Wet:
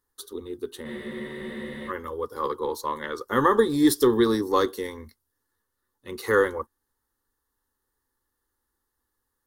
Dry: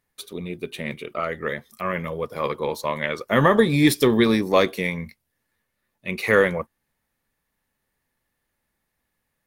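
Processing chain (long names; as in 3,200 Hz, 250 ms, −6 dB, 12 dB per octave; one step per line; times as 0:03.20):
phaser with its sweep stopped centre 640 Hz, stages 6
frozen spectrum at 0:00.88, 1.02 s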